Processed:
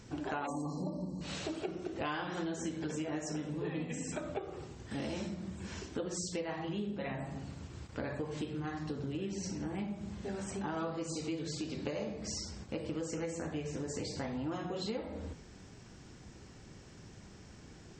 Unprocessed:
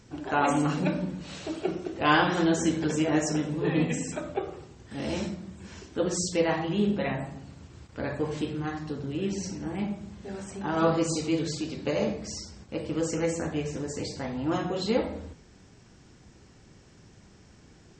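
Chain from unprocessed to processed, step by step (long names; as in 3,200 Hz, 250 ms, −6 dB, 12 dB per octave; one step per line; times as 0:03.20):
time-frequency box erased 0:00.47–0:01.21, 1,200–4,000 Hz
downward compressor 8 to 1, threshold −36 dBFS, peak gain reduction 18 dB
level +1 dB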